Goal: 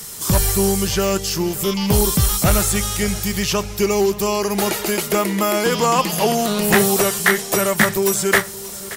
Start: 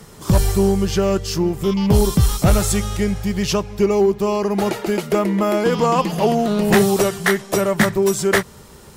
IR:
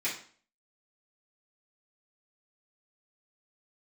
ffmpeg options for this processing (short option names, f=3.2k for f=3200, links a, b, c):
-filter_complex "[0:a]asplit=2[a][b];[b]adelay=577,lowpass=f=2.2k:p=1,volume=-17.5dB,asplit=2[c][d];[d]adelay=577,lowpass=f=2.2k:p=1,volume=0.53,asplit=2[e][f];[f]adelay=577,lowpass=f=2.2k:p=1,volume=0.53,asplit=2[g][h];[h]adelay=577,lowpass=f=2.2k:p=1,volume=0.53,asplit=2[i][j];[j]adelay=577,lowpass=f=2.2k:p=1,volume=0.53[k];[a][c][e][g][i][k]amix=inputs=6:normalize=0,acrossover=split=2500[l][m];[m]acompressor=threshold=-36dB:ratio=4:attack=1:release=60[n];[l][n]amix=inputs=2:normalize=0,crystalizer=i=8.5:c=0,volume=-3dB"